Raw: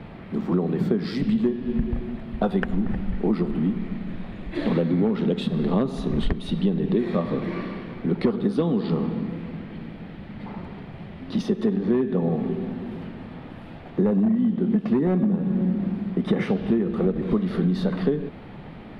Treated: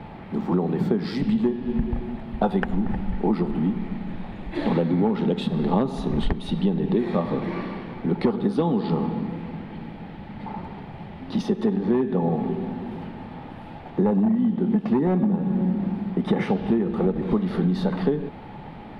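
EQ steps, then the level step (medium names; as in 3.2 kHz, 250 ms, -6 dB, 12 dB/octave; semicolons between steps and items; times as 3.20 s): peaking EQ 850 Hz +11 dB 0.26 oct; 0.0 dB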